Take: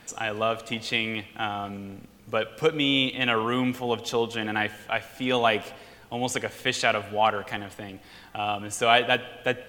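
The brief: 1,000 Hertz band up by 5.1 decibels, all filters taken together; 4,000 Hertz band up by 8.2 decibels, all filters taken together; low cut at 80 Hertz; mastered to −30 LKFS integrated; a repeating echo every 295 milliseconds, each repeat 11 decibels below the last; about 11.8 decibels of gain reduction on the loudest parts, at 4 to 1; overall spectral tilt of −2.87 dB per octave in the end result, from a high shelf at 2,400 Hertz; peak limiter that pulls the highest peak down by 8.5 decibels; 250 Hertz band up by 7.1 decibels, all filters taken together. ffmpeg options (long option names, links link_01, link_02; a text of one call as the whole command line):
ffmpeg -i in.wav -af "highpass=80,equalizer=frequency=250:width_type=o:gain=7.5,equalizer=frequency=1000:width_type=o:gain=5.5,highshelf=frequency=2400:gain=6,equalizer=frequency=4000:width_type=o:gain=5.5,acompressor=threshold=-25dB:ratio=4,alimiter=limit=-18dB:level=0:latency=1,aecho=1:1:295|590|885:0.282|0.0789|0.0221,volume=0.5dB" out.wav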